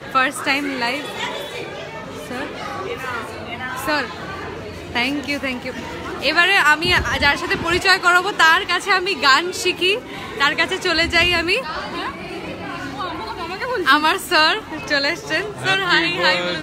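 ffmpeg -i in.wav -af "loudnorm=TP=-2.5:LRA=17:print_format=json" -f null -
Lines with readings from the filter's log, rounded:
"input_i" : "-17.7",
"input_tp" : "-1.6",
"input_lra" : "8.6",
"input_thresh" : "-28.2",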